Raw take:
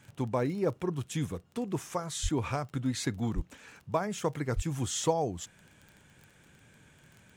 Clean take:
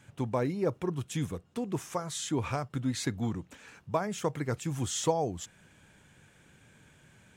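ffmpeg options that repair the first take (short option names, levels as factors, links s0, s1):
-filter_complex "[0:a]adeclick=t=4,asplit=3[s0][s1][s2];[s0]afade=t=out:st=2.22:d=0.02[s3];[s1]highpass=f=140:w=0.5412,highpass=f=140:w=1.3066,afade=t=in:st=2.22:d=0.02,afade=t=out:st=2.34:d=0.02[s4];[s2]afade=t=in:st=2.34:d=0.02[s5];[s3][s4][s5]amix=inputs=3:normalize=0,asplit=3[s6][s7][s8];[s6]afade=t=out:st=3.35:d=0.02[s9];[s7]highpass=f=140:w=0.5412,highpass=f=140:w=1.3066,afade=t=in:st=3.35:d=0.02,afade=t=out:st=3.47:d=0.02[s10];[s8]afade=t=in:st=3.47:d=0.02[s11];[s9][s10][s11]amix=inputs=3:normalize=0,asplit=3[s12][s13][s14];[s12]afade=t=out:st=4.55:d=0.02[s15];[s13]highpass=f=140:w=0.5412,highpass=f=140:w=1.3066,afade=t=in:st=4.55:d=0.02,afade=t=out:st=4.67:d=0.02[s16];[s14]afade=t=in:st=4.67:d=0.02[s17];[s15][s16][s17]amix=inputs=3:normalize=0"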